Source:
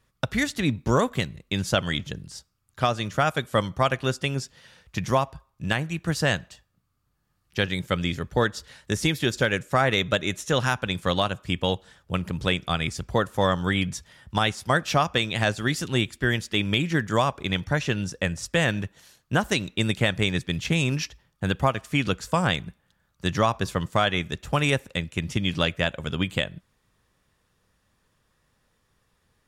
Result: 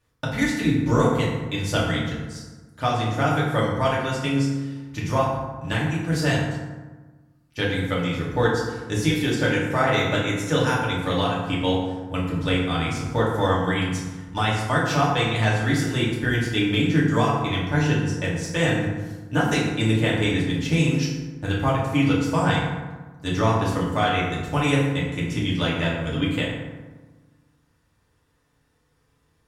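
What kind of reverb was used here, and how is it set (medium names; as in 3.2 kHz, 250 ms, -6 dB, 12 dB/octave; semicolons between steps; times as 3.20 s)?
FDN reverb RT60 1.3 s, low-frequency decay 1.25×, high-frequency decay 0.5×, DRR -6.5 dB; trim -6 dB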